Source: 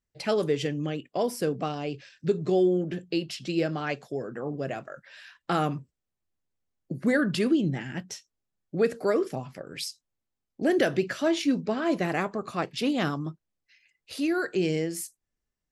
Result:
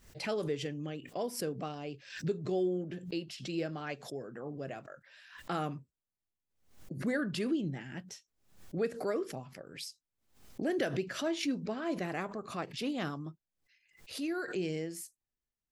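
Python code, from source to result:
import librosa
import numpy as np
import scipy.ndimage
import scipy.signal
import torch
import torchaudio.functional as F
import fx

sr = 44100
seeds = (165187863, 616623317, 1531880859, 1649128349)

y = fx.pre_swell(x, sr, db_per_s=110.0)
y = F.gain(torch.from_numpy(y), -9.0).numpy()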